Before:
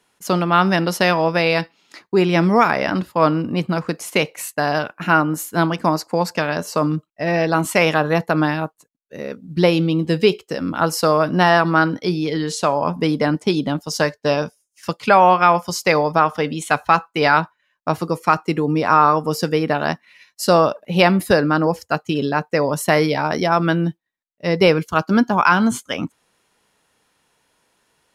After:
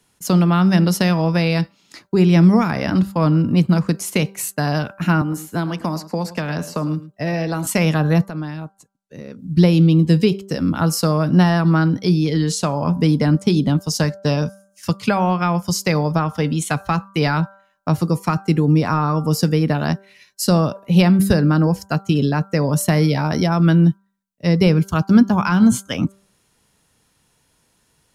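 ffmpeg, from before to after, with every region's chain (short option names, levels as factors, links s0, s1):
-filter_complex "[0:a]asettb=1/sr,asplit=3[s0][s1][s2];[s0]atrim=end=5.214[s3];[s1]atrim=start=5.21:end=7.67,asetpts=PTS-STARTPTS,afade=t=in:d=0.004:c=qsin,afade=t=out:st=2.456:d=0.004:c=qsin,acrossover=split=280|3500[s4][s5][s6];[s4]acompressor=threshold=0.0224:ratio=4[s7];[s5]acompressor=threshold=0.0891:ratio=4[s8];[s6]acompressor=threshold=0.00794:ratio=4[s9];[s7][s8][s9]amix=inputs=3:normalize=0,aecho=1:1:107:0.168,atrim=end_sample=108486[s10];[s2]atrim=start=7.666[s11];[s3][s10]acrossfade=d=0.004:c1=hsin:c2=qsin[s12];[s12][s11]acrossfade=d=0.004:c1=qsin:c2=hsin,asettb=1/sr,asplit=3[s13][s14][s15];[s13]atrim=end=8.284[s16];[s14]atrim=start=8.28:end=9.39,asetpts=PTS-STARTPTS,afade=t=in:d=0.004:c=qsin,afade=t=out:st=1.106:d=0.004:c=qsin,lowpass=10000,acompressor=threshold=0.0126:ratio=2:attack=3.2:release=140:knee=1:detection=peak[s17];[s15]atrim=start=9.386[s18];[s16][s17]acrossfade=d=0.004:c1=hsin:c2=qsin[s19];[s19][s18]acrossfade=d=0.004:c1=qsin:c2=hsin,bass=f=250:g=13,treble=f=4000:g=7,bandreject=f=195.6:t=h:w=4,bandreject=f=391.2:t=h:w=4,bandreject=f=586.8:t=h:w=4,bandreject=f=782.4:t=h:w=4,bandreject=f=978:t=h:w=4,bandreject=f=1173.6:t=h:w=4,bandreject=f=1369.2:t=h:w=4,bandreject=f=1564.8:t=h:w=4,acrossover=split=290[s20][s21];[s21]acompressor=threshold=0.126:ratio=2.5[s22];[s20][s22]amix=inputs=2:normalize=0,volume=0.794"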